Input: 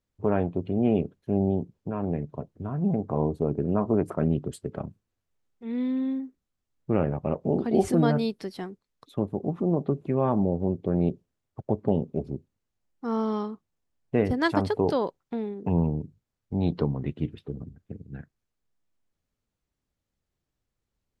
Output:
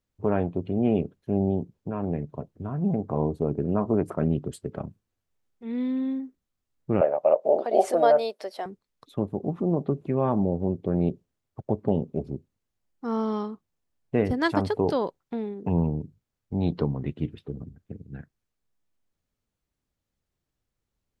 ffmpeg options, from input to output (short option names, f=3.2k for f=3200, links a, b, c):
-filter_complex "[0:a]asettb=1/sr,asplit=3[a][b][c];[a]atrim=end=7.014[d];[b]atrim=start=7.01:end=8.66,asetpts=PTS-STARTPTS,afade=t=in:d=0.004:c=qsin,afade=t=out:st=1.646:d=0.004:c=qsin,highpass=f=600:t=q:w=5.5[e];[c]atrim=start=8.656[f];[d][e]acrossfade=d=0.004:c1=hsin:c2=qsin[g];[g][f]acrossfade=d=0.004:c1=qsin:c2=hsin"